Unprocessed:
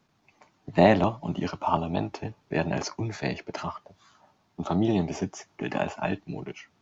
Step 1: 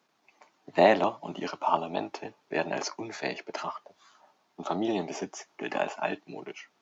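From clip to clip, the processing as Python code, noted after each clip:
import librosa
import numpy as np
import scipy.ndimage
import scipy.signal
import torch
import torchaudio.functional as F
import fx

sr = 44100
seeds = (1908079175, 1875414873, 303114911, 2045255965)

y = scipy.signal.sosfilt(scipy.signal.butter(2, 350.0, 'highpass', fs=sr, output='sos'), x)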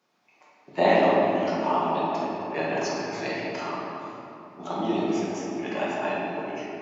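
y = fx.room_shoebox(x, sr, seeds[0], volume_m3=160.0, walls='hard', distance_m=0.98)
y = y * 10.0 ** (-4.0 / 20.0)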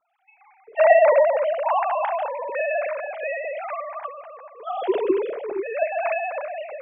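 y = fx.sine_speech(x, sr)
y = fx.low_shelf(y, sr, hz=340.0, db=6.5)
y = y * 10.0 ** (2.5 / 20.0)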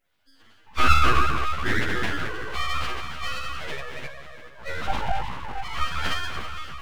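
y = fx.freq_snap(x, sr, grid_st=2)
y = np.abs(y)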